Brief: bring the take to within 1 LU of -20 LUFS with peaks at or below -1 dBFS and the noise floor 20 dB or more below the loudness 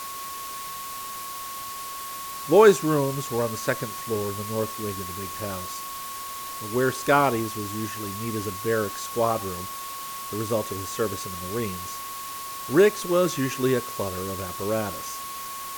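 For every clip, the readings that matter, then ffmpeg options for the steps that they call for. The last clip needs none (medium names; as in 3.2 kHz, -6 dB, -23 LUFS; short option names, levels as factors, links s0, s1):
steady tone 1.1 kHz; tone level -35 dBFS; noise floor -35 dBFS; noise floor target -47 dBFS; loudness -26.5 LUFS; peak level -4.5 dBFS; loudness target -20.0 LUFS
-> -af "bandreject=f=1100:w=30"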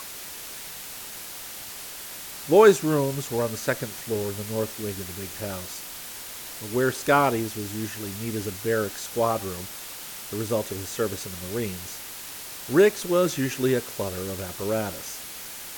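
steady tone not found; noise floor -39 dBFS; noise floor target -47 dBFS
-> -af "afftdn=nr=8:nf=-39"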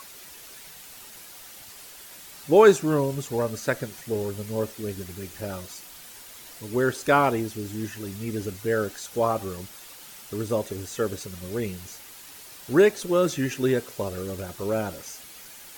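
noise floor -45 dBFS; noise floor target -46 dBFS
-> -af "afftdn=nr=6:nf=-45"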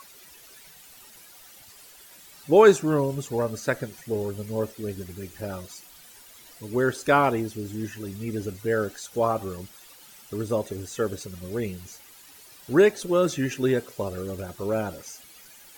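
noise floor -50 dBFS; loudness -25.5 LUFS; peak level -4.5 dBFS; loudness target -20.0 LUFS
-> -af "volume=1.88,alimiter=limit=0.891:level=0:latency=1"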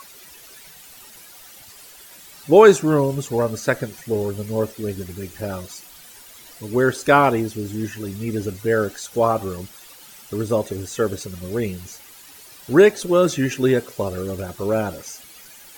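loudness -20.5 LUFS; peak level -1.0 dBFS; noise floor -45 dBFS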